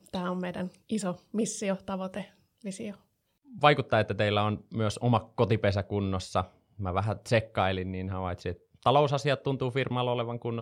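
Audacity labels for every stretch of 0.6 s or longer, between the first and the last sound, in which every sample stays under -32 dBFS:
2.910000	3.630000	silence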